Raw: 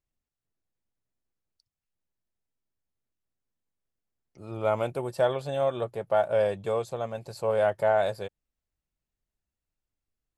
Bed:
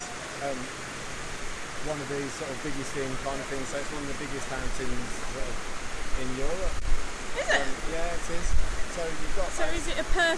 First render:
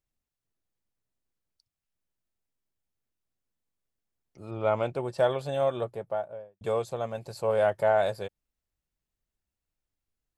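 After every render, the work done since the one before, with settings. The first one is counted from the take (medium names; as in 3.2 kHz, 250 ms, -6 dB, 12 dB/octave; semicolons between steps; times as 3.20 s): 4.50–5.17 s: low-pass 4.1 kHz -> 7.3 kHz; 5.67–6.61 s: studio fade out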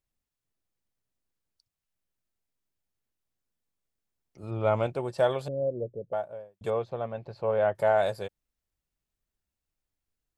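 4.43–4.87 s: bass shelf 140 Hz +9 dB; 5.48–6.13 s: elliptic low-pass 530 Hz, stop band 70 dB; 6.70–7.75 s: distance through air 300 m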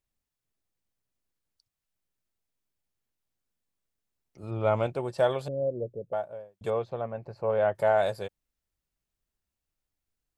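7.01–7.50 s: peaking EQ 3.5 kHz -13.5 dB 0.54 oct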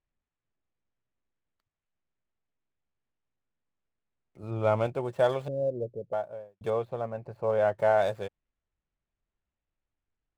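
median filter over 9 samples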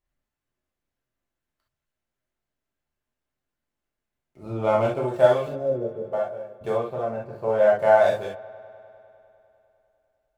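feedback echo behind a low-pass 100 ms, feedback 80%, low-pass 3.1 kHz, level -22 dB; gated-style reverb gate 90 ms flat, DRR -4 dB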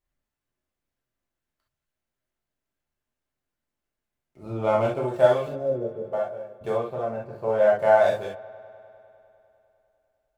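trim -1 dB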